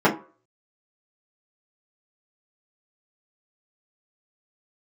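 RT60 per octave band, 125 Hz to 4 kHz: 0.30, 0.30, 0.40, 0.40, 0.35, 0.20 s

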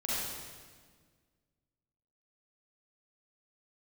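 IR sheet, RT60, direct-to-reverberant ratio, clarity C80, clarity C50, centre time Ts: 1.6 s, -8.0 dB, -1.5 dB, -5.0 dB, 0.127 s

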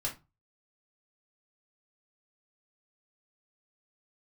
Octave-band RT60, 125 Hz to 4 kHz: 0.50, 0.30, 0.25, 0.25, 0.20, 0.20 s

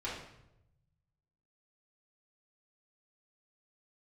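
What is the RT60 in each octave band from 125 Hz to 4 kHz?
1.7, 1.0, 0.95, 0.75, 0.70, 0.65 s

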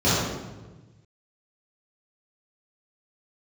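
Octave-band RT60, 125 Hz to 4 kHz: 2.0, 1.5, 1.3, 1.1, 1.0, 0.80 s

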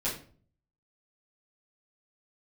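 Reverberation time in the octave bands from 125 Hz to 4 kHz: 0.80, 0.60, 0.50, 0.40, 0.35, 0.30 s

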